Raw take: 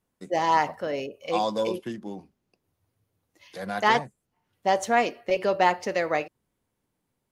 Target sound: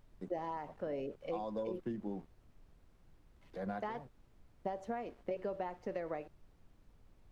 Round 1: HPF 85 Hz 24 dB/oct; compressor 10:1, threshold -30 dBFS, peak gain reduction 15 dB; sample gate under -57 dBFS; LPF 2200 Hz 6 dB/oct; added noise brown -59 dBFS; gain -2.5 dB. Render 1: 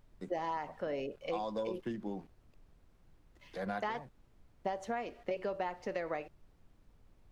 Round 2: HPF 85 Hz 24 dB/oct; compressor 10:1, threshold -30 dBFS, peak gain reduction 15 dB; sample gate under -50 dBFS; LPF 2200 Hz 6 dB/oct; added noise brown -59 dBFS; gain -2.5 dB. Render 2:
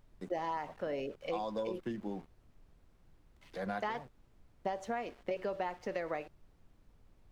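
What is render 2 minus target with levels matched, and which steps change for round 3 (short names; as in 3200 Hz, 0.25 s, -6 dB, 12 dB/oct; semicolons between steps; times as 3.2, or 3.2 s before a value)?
2000 Hz band +5.0 dB
change: LPF 600 Hz 6 dB/oct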